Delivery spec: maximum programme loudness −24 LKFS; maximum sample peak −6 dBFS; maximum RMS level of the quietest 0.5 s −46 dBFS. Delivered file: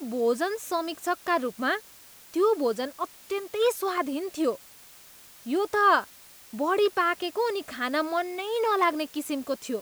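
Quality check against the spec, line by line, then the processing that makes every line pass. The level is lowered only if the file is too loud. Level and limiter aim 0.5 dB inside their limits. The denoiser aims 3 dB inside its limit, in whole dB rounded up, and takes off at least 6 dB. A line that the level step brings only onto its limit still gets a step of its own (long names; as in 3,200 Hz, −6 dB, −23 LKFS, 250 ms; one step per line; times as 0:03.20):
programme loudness −27.0 LKFS: in spec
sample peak −9.5 dBFS: in spec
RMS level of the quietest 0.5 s −51 dBFS: in spec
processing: no processing needed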